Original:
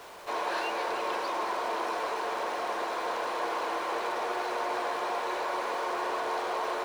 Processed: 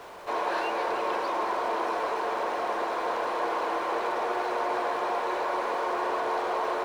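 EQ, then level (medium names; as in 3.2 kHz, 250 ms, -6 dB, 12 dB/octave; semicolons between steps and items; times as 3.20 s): treble shelf 2.4 kHz -8 dB; +4.0 dB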